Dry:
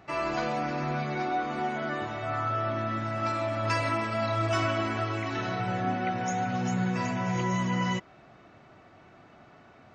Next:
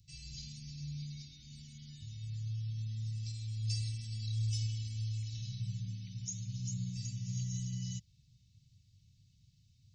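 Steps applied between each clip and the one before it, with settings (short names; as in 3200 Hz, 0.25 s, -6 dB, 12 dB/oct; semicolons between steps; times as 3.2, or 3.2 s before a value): inverse Chebyshev band-stop 470–1200 Hz, stop band 80 dB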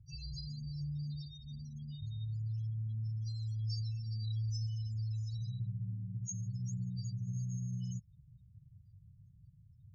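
loudest bins only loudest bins 8; compressor 2.5:1, threshold -45 dBFS, peak gain reduction 9 dB; gain +6.5 dB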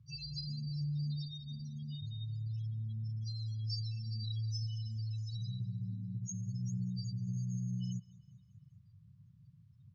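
speaker cabinet 160–5300 Hz, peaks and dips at 380 Hz -5 dB, 760 Hz -8 dB, 1100 Hz +8 dB; feedback echo 0.197 s, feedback 55%, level -21.5 dB; gain +6.5 dB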